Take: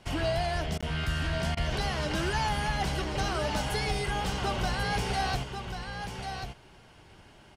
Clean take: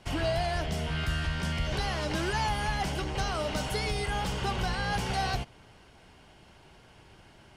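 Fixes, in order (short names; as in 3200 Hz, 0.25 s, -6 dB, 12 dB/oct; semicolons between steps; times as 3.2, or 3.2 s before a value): interpolate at 0.81, 16 ms; interpolate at 0.78/1.55, 19 ms; inverse comb 1.09 s -7 dB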